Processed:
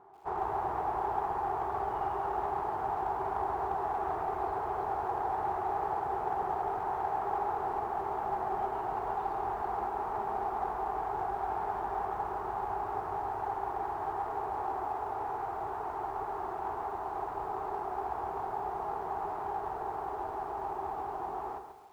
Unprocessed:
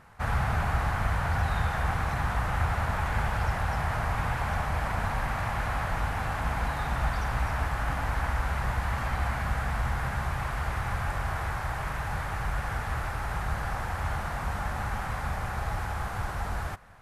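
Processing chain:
change of speed 0.776×
pair of resonant band-passes 560 Hz, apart 1 octave
in parallel at −11 dB: asymmetric clip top −47 dBFS
on the sum: feedback echo at a low word length 135 ms, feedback 35%, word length 11 bits, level −8 dB
level +5.5 dB

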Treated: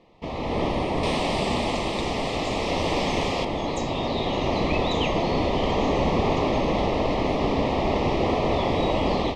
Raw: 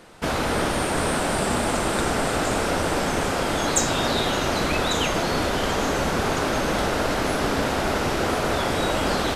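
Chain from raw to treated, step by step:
0:01.03–0:03.45: high-shelf EQ 2,300 Hz +11.5 dB
automatic gain control gain up to 11.5 dB
Butterworth band-reject 1,500 Hz, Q 1.8
high-frequency loss of the air 220 metres
level −7 dB

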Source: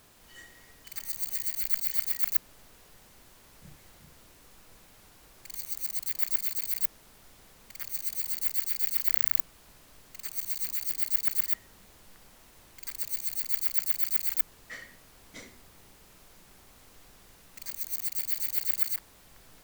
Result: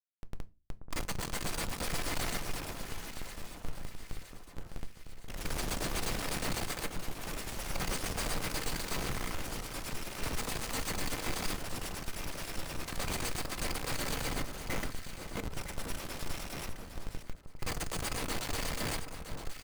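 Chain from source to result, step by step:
pitch shifter swept by a sawtooth +1.5 semitones, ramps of 1,072 ms
Chebyshev low-pass filter 11,000 Hz, order 3
low-shelf EQ 69 Hz +7 dB
notch filter 1,700 Hz, Q 8.6
comb filter 3.9 ms, depth 88%
in parallel at +3 dB: brickwall limiter −30.5 dBFS, peak gain reduction 6.5 dB
on the sum: comparator with hysteresis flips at −32.5 dBFS
delay that swaps between a low-pass and a high-pass 482 ms, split 1,400 Hz, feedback 72%, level −8 dB
on a send at −12 dB: convolution reverb RT60 0.30 s, pre-delay 6 ms
on the sum: delay with pitch and tempo change per echo 713 ms, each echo +3 semitones, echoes 3, each echo −6 dB
level +2.5 dB

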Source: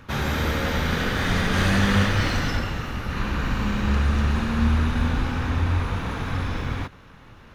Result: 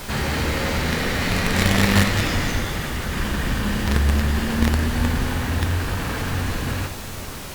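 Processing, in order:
in parallel at −9.5 dB: log-companded quantiser 2 bits
on the sum: background noise pink −33 dBFS
formants moved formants +3 semitones
four-comb reverb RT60 2.9 s, combs from 29 ms, DRR 12 dB
level −1 dB
Opus 48 kbit/s 48,000 Hz

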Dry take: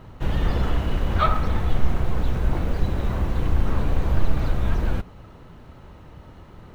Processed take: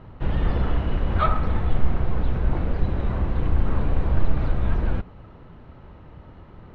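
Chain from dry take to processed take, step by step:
high-frequency loss of the air 250 metres

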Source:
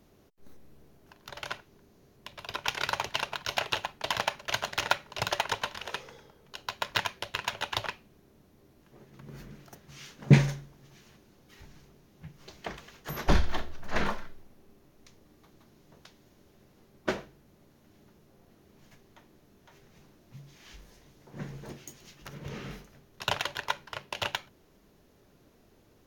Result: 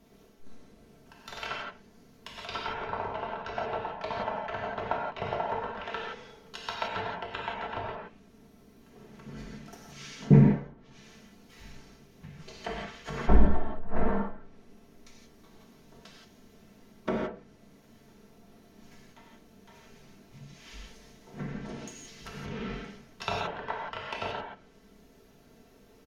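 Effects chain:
treble cut that deepens with the level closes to 880 Hz, closed at −30.5 dBFS
comb filter 4.5 ms, depth 56%
reverb whose tail is shaped and stops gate 200 ms flat, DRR −3 dB
level −1.5 dB

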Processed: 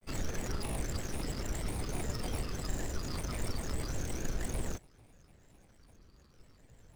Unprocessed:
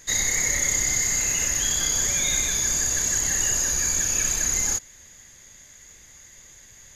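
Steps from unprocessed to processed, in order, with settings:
running median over 41 samples
granular cloud, spray 22 ms, pitch spread up and down by 7 semitones

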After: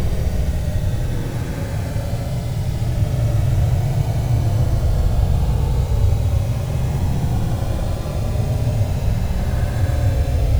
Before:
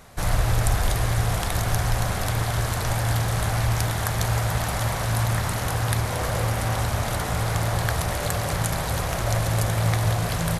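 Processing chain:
running median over 41 samples
spectral tilt −2.5 dB per octave
in parallel at +3 dB: compressor whose output falls as the input rises −19 dBFS, ratio −1
on the sum: bit reduction 5 bits
on a send: backwards echo 252 ms −4.5 dB
on the sum: pitch vibrato 2.6 Hz 70 cents
extreme stretch with random phases 33×, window 0.05 s, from 0:07.59
level −8 dB

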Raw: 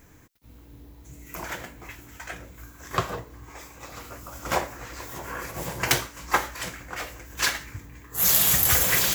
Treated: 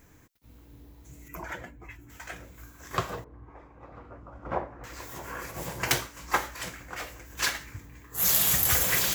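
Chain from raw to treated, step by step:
0:01.28–0:02.10: expanding power law on the bin magnitudes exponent 1.6
0:03.24–0:04.84: low-pass filter 1,100 Hz 12 dB per octave
level −3.5 dB

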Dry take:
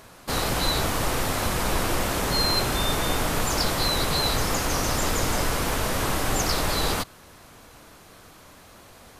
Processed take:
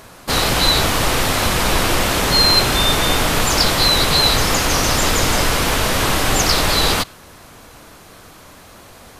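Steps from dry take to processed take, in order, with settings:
dynamic equaliser 3,300 Hz, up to +5 dB, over −39 dBFS, Q 0.73
level +7 dB

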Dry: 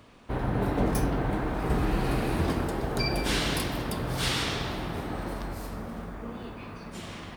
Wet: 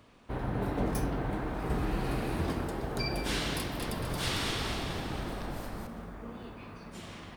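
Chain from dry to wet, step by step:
0:03.57–0:05.87: echo with shifted repeats 226 ms, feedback 55%, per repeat −34 Hz, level −4 dB
level −5 dB

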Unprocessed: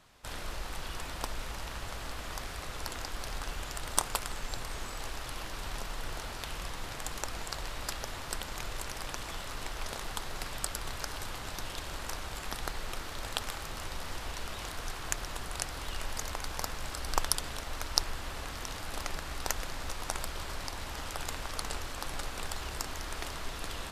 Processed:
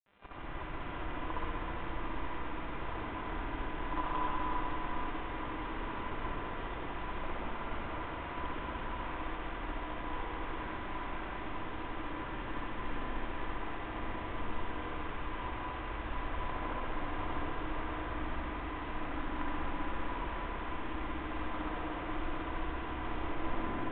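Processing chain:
turntable brake at the end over 1.26 s
mains-hum notches 50/100/150/200/250/300 Hz
granular cloud 100 ms, grains 20 per second
hollow resonant body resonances 310/1,000 Hz, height 15 dB, ringing for 85 ms
hum with harmonics 400 Hz, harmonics 15, −48 dBFS −1 dB per octave
bit-depth reduction 6 bits, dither none
high-frequency loss of the air 490 metres
feedback delay with all-pass diffusion 506 ms, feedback 68%, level −10 dB
convolution reverb RT60 3.3 s, pre-delay 61 ms, DRR −7 dB
level −7 dB
G.726 40 kbit/s 8,000 Hz

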